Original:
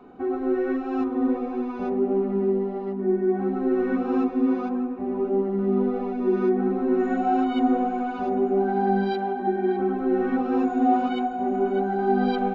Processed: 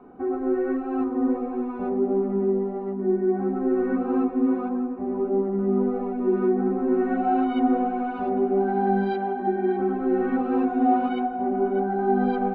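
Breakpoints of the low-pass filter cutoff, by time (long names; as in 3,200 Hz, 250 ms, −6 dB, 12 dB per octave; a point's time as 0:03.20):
0:06.70 1,700 Hz
0:07.39 2,700 Hz
0:11.05 2,700 Hz
0:11.64 1,800 Hz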